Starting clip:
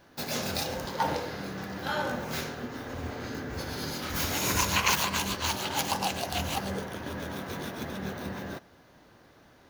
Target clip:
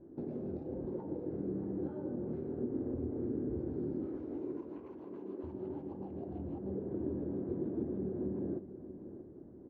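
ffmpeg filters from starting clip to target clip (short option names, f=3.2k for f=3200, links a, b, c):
-filter_complex "[0:a]asettb=1/sr,asplit=3[a][b][c];[a]atrim=end=4.064[d];[b]atrim=start=4.06:end=5.44,asetpts=PTS-STARTPTS,afade=t=in:d=0.004:c=qsin,afade=t=out:st=1.376:d=0.004:c=qsin,highpass=f=260:w=0.5412,highpass=f=260:w=1.3066[e];[c]atrim=start=5.436[f];[d][e]acrossfade=d=0.004:c1=hsin:c2=qsin[g];[g][f]acrossfade=d=0.004:c1=qsin:c2=hsin,acompressor=threshold=-37dB:ratio=12,lowpass=f=350:t=q:w=4.2,aecho=1:1:634|1268|1902|2536:0.224|0.0806|0.029|0.0104"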